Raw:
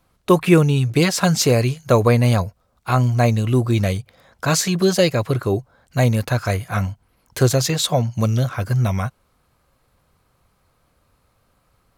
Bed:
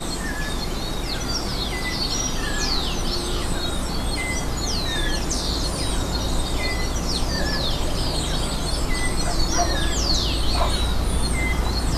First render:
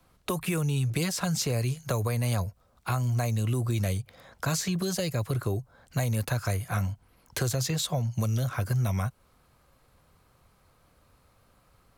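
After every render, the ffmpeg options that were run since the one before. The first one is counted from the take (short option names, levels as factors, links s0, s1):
-filter_complex "[0:a]acrossover=split=550|1400[s0][s1][s2];[s0]alimiter=limit=0.188:level=0:latency=1[s3];[s3][s1][s2]amix=inputs=3:normalize=0,acrossover=split=130|6700[s4][s5][s6];[s4]acompressor=threshold=0.0355:ratio=4[s7];[s5]acompressor=threshold=0.0251:ratio=4[s8];[s6]acompressor=threshold=0.0158:ratio=4[s9];[s7][s8][s9]amix=inputs=3:normalize=0"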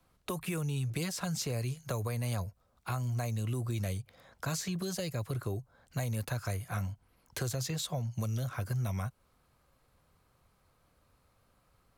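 -af "volume=0.473"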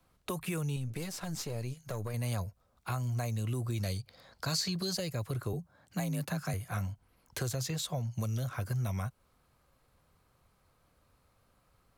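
-filter_complex "[0:a]asettb=1/sr,asplit=3[s0][s1][s2];[s0]atrim=end=0.764[s3];[s1]atrim=start=0.76:end=2.14,asetpts=PTS-STARTPTS,afade=t=in:d=0.004:c=qsin,afade=t=out:st=1.376:d=0.004:c=qsin,aeval=exprs='(tanh(28.2*val(0)+0.65)-tanh(0.65))/28.2':c=same[s4];[s2]atrim=start=2.136[s5];[s3][s4]acrossfade=d=0.004:c1=hsin:c2=qsin[s6];[s6][s5]acrossfade=d=0.004:c1=qsin:c2=hsin,asettb=1/sr,asplit=3[s7][s8][s9];[s7]atrim=end=3.834[s10];[s8]atrim=start=3.83:end=4.97,asetpts=PTS-STARTPTS,afade=t=in:d=0.004:c=qsin,afade=t=out:st=1.136:d=0.004:c=qsin,equalizer=f=4500:w=4.5:g=14.5[s11];[s9]atrim=start=4.966[s12];[s10][s11]acrossfade=d=0.004:c1=hsin:c2=qsin[s13];[s13][s12]acrossfade=d=0.004:c1=qsin:c2=hsin,asettb=1/sr,asplit=3[s14][s15][s16];[s14]atrim=end=5.534[s17];[s15]atrim=start=5.53:end=6.54,asetpts=PTS-STARTPTS,afade=t=in:d=0.004:c=qsin,afade=t=out:st=1.006:d=0.004:c=qsin,afreqshift=43[s18];[s16]atrim=start=6.536[s19];[s17][s18]acrossfade=d=0.004:c1=hsin:c2=qsin[s20];[s20][s19]acrossfade=d=0.004:c1=qsin:c2=hsin"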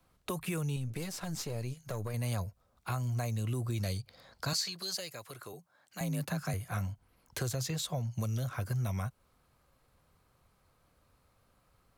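-filter_complex "[0:a]asettb=1/sr,asplit=3[s0][s1][s2];[s0]atrim=end=4.534[s3];[s1]atrim=start=4.53:end=6.01,asetpts=PTS-STARTPTS,afade=t=in:d=0.004:c=qsin,afade=t=out:st=1.476:d=0.004:c=qsin,highpass=f=1000:p=1[s4];[s2]atrim=start=6.006[s5];[s3][s4]acrossfade=d=0.004:c1=hsin:c2=qsin[s6];[s6][s5]acrossfade=d=0.004:c1=qsin:c2=hsin"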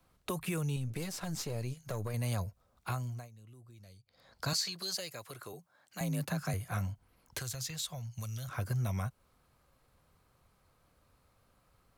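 -filter_complex "[0:a]asettb=1/sr,asplit=3[s0][s1][s2];[s0]atrim=end=7.394[s3];[s1]atrim=start=7.39:end=8.49,asetpts=PTS-STARTPTS,afade=t=in:d=0.004:c=qsin,afade=t=out:st=1.096:d=0.004:c=qsin,equalizer=f=340:w=0.44:g=-14[s4];[s2]atrim=start=8.486[s5];[s3][s4]acrossfade=d=0.004:c1=hsin:c2=qsin[s6];[s6][s5]acrossfade=d=0.004:c1=qsin:c2=hsin,asplit=3[s7][s8][s9];[s7]atrim=end=3.29,asetpts=PTS-STARTPTS,afade=t=out:st=2.88:d=0.41:silence=0.0841395[s10];[s8]atrim=start=3.29:end=4.05,asetpts=PTS-STARTPTS,volume=0.0841[s11];[s9]atrim=start=4.05,asetpts=PTS-STARTPTS,afade=t=in:d=0.41:silence=0.0841395[s12];[s10][s11][s12]concat=n=3:v=0:a=1"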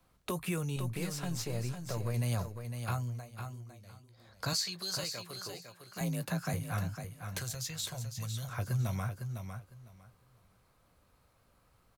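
-filter_complex "[0:a]asplit=2[s0][s1];[s1]adelay=17,volume=0.251[s2];[s0][s2]amix=inputs=2:normalize=0,aecho=1:1:505|1010|1515:0.422|0.0801|0.0152"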